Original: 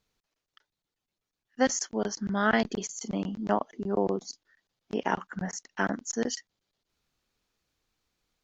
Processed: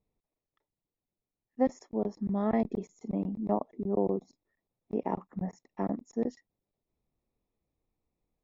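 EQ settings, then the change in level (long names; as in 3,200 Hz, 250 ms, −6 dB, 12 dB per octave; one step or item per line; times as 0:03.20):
moving average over 29 samples
0.0 dB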